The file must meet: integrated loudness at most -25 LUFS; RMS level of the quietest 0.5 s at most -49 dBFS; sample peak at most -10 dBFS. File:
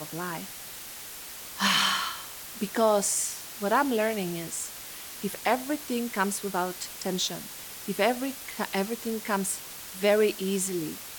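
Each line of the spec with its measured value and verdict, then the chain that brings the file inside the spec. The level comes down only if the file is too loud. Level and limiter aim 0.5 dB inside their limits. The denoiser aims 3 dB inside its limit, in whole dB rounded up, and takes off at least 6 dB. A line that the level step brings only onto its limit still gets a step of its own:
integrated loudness -28.5 LUFS: pass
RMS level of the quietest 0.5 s -42 dBFS: fail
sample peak -11.5 dBFS: pass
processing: noise reduction 10 dB, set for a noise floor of -42 dBFS

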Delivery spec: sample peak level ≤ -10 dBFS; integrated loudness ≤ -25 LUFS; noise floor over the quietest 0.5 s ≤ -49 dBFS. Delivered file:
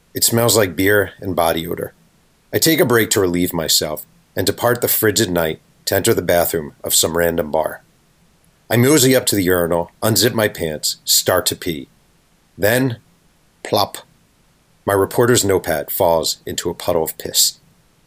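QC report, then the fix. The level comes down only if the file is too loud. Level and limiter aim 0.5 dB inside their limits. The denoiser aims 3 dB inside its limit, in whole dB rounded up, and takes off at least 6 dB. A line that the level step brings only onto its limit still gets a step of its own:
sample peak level -2.0 dBFS: fail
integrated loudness -16.5 LUFS: fail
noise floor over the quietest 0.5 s -56 dBFS: pass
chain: trim -9 dB

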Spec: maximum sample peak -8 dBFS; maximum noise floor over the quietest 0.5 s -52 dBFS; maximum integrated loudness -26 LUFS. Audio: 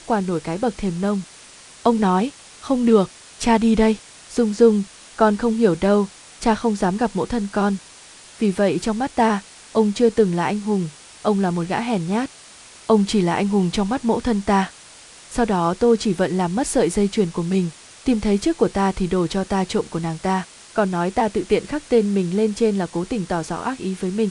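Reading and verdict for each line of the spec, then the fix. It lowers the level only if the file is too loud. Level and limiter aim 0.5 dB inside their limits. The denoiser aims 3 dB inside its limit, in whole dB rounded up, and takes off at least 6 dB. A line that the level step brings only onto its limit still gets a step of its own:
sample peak -2.5 dBFS: fail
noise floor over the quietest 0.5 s -44 dBFS: fail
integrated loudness -20.5 LUFS: fail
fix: noise reduction 6 dB, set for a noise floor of -44 dBFS; trim -6 dB

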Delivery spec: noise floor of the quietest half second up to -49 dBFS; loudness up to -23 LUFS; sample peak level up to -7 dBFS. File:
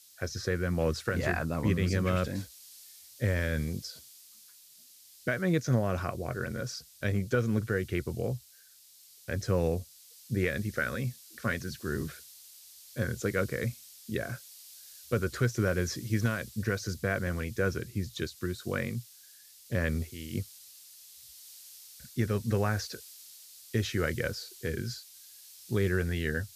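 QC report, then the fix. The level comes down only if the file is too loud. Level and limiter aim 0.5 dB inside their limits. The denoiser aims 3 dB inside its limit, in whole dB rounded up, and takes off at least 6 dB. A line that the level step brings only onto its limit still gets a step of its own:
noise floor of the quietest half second -58 dBFS: pass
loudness -32.0 LUFS: pass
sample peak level -16.0 dBFS: pass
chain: none needed

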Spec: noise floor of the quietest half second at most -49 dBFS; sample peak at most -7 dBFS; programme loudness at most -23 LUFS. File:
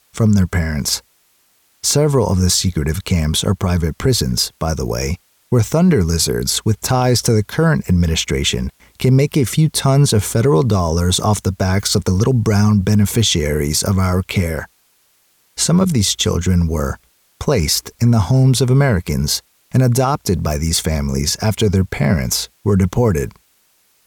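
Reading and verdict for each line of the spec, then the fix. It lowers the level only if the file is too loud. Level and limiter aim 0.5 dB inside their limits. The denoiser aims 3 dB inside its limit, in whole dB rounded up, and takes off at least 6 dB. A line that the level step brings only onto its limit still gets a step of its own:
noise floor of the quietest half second -58 dBFS: pass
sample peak -5.5 dBFS: fail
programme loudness -16.0 LUFS: fail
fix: trim -7.5 dB

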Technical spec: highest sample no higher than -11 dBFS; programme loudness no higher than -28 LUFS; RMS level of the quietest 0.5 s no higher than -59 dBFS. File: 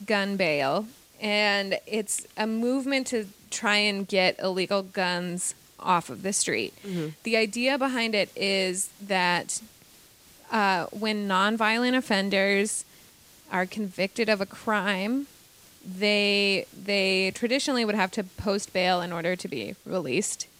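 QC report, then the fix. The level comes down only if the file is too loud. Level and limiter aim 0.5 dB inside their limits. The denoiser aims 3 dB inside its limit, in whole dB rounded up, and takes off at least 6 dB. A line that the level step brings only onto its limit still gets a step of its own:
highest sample -8.0 dBFS: fail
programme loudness -26.0 LUFS: fail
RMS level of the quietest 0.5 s -54 dBFS: fail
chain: noise reduction 6 dB, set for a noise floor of -54 dBFS; trim -2.5 dB; peak limiter -11.5 dBFS

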